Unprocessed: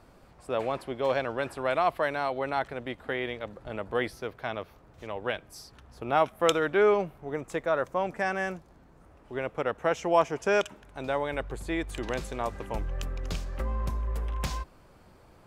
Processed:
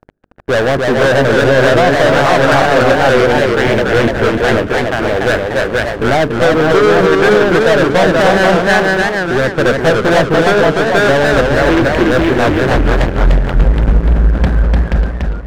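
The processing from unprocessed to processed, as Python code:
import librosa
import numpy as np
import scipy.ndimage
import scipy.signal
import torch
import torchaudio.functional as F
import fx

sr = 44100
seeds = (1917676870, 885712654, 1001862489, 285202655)

p1 = fx.wiener(x, sr, points=41)
p2 = p1 + fx.echo_single(p1, sr, ms=479, db=-5.5, dry=0)
p3 = fx.env_lowpass_down(p2, sr, base_hz=500.0, full_db=-21.0)
p4 = fx.peak_eq(p3, sr, hz=530.0, db=9.5, octaves=0.24, at=(2.65, 3.32))
p5 = fx.leveller(p4, sr, passes=5)
p6 = scipy.signal.sosfilt(scipy.signal.butter(2, 4000.0, 'lowpass', fs=sr, output='sos'), p5)
p7 = fx.peak_eq(p6, sr, hz=1600.0, db=11.5, octaves=0.44)
p8 = fx.hum_notches(p7, sr, base_hz=50, count=9)
p9 = fx.leveller(p8, sr, passes=3)
p10 = fx.echo_warbled(p9, sr, ms=292, feedback_pct=44, rate_hz=2.8, cents=167, wet_db=-3)
y = F.gain(torch.from_numpy(p10), -2.0).numpy()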